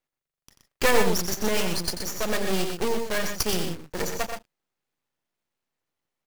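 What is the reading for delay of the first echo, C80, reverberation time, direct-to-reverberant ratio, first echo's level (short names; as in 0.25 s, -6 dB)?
89 ms, none, none, none, -9.5 dB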